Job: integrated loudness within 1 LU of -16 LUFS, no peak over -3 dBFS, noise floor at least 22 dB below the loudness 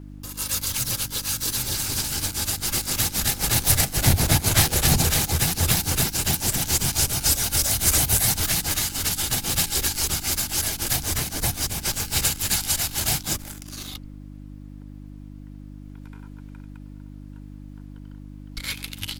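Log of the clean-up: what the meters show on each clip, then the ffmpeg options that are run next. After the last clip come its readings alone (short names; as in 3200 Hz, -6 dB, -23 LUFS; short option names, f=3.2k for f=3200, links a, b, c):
hum 50 Hz; harmonics up to 300 Hz; hum level -36 dBFS; loudness -21.5 LUFS; peak -3.0 dBFS; loudness target -16.0 LUFS
-> -af "bandreject=f=50:t=h:w=4,bandreject=f=100:t=h:w=4,bandreject=f=150:t=h:w=4,bandreject=f=200:t=h:w=4,bandreject=f=250:t=h:w=4,bandreject=f=300:t=h:w=4"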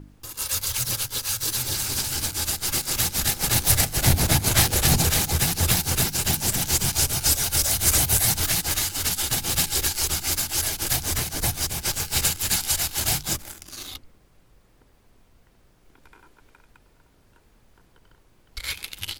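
hum none; loudness -21.5 LUFS; peak -3.5 dBFS; loudness target -16.0 LUFS
-> -af "volume=5.5dB,alimiter=limit=-3dB:level=0:latency=1"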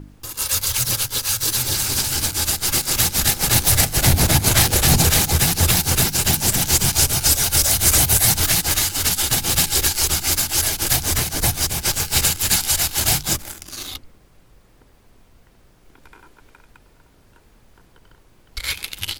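loudness -16.5 LUFS; peak -3.0 dBFS; noise floor -54 dBFS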